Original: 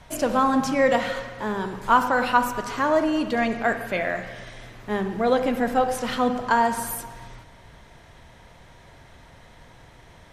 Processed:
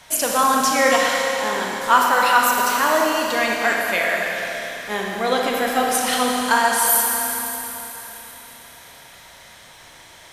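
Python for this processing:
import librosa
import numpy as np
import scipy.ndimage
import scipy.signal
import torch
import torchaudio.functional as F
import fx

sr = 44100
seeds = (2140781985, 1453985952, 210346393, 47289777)

y = fx.tilt_eq(x, sr, slope=3.5)
y = fx.rev_schroeder(y, sr, rt60_s=3.7, comb_ms=28, drr_db=-0.5)
y = F.gain(torch.from_numpy(y), 2.0).numpy()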